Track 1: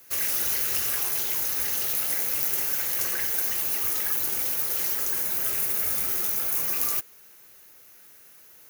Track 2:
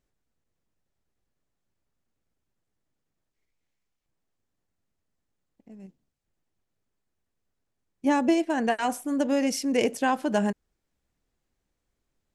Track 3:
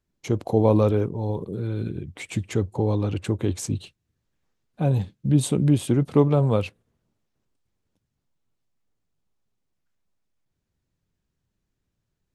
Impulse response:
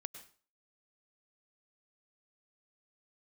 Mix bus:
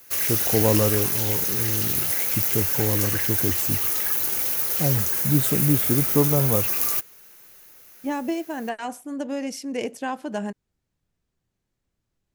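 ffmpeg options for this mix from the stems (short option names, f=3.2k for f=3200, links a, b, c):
-filter_complex "[0:a]volume=2.5dB[a];[1:a]volume=-4.5dB[b];[2:a]volume=-2dB[c];[a][b][c]amix=inputs=3:normalize=0"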